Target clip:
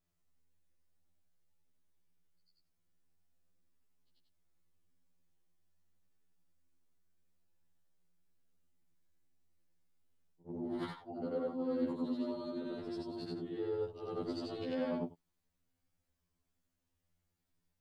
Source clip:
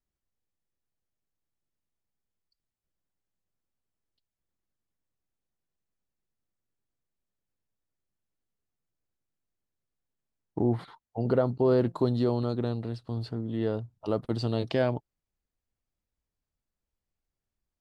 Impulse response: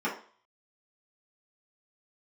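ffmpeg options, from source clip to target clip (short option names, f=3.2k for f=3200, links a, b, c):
-af "afftfilt=real='re':imag='-im':win_size=8192:overlap=0.75,areverse,acompressor=threshold=-42dB:ratio=12,areverse,equalizer=f=200:w=1.4:g=4.5,afftfilt=real='re*2*eq(mod(b,4),0)':imag='im*2*eq(mod(b,4),0)':win_size=2048:overlap=0.75,volume=10dB"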